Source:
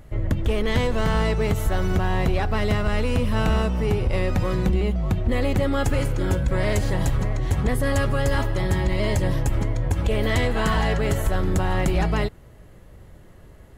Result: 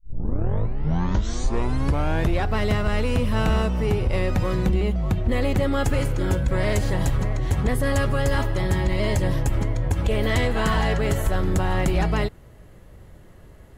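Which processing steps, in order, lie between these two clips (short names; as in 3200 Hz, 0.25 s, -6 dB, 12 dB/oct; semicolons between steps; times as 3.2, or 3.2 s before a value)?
tape start at the beginning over 2.49 s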